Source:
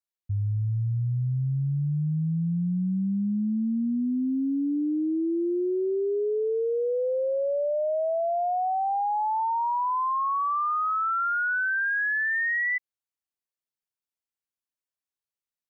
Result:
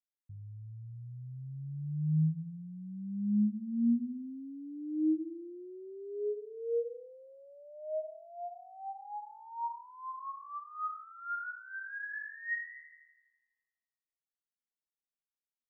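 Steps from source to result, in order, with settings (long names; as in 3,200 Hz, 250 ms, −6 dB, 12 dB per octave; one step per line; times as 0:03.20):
low shelf with overshoot 420 Hz +7 dB, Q 1.5
resonators tuned to a chord D#3 sus4, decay 0.59 s
delay with a high-pass on its return 83 ms, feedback 64%, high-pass 1,600 Hz, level −8 dB
level +3 dB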